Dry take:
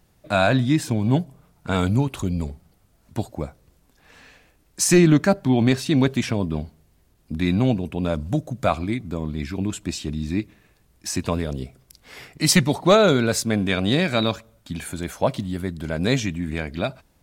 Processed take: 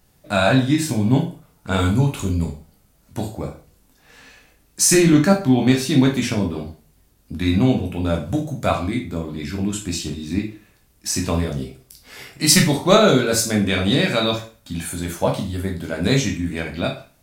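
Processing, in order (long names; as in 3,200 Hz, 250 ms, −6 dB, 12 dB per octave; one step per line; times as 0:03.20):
high-shelf EQ 5,500 Hz +6 dB
convolution reverb RT60 0.40 s, pre-delay 10 ms, DRR 0.5 dB
level −1 dB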